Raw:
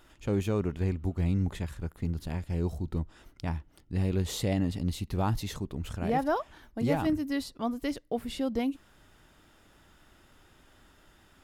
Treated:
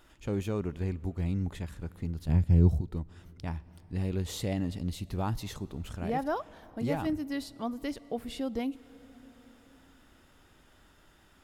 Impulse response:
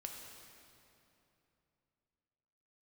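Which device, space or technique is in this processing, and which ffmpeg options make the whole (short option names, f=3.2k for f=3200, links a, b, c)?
compressed reverb return: -filter_complex "[0:a]asettb=1/sr,asplit=3[a][b][c];[a]atrim=end=2.284[d];[b]atrim=start=2.28:end=2.81,asetpts=PTS-STARTPTS,afade=t=in:d=0.004:c=qsin,afade=t=out:st=0.526:d=0.004:c=qsin,equalizer=f=110:t=o:w=3:g=15[e];[c]atrim=start=2.806[f];[d][e]acrossfade=d=0.004:c1=hsin:c2=qsin[g];[g][f]acrossfade=d=0.004:c1=qsin:c2=hsin,asplit=2[h][i];[1:a]atrim=start_sample=2205[j];[i][j]afir=irnorm=-1:irlink=0,acompressor=threshold=-41dB:ratio=6,volume=-4.5dB[k];[h][k]amix=inputs=2:normalize=0,volume=-4dB"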